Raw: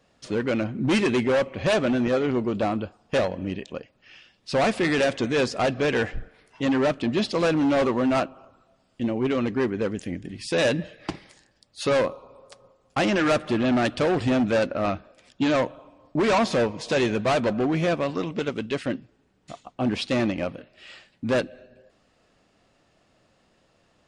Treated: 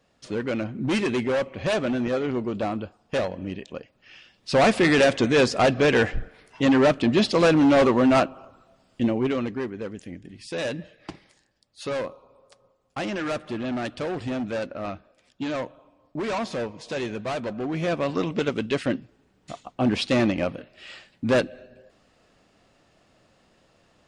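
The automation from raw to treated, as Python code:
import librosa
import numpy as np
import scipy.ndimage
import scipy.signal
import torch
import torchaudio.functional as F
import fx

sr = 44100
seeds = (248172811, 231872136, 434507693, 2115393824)

y = fx.gain(x, sr, db=fx.line((3.6, -2.5), (4.69, 4.0), (9.02, 4.0), (9.7, -7.0), (17.56, -7.0), (18.19, 2.5)))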